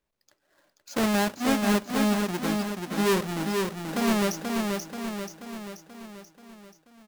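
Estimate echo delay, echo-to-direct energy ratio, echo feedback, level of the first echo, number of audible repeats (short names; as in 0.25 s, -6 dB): 0.483 s, -2.5 dB, 55%, -4.0 dB, 6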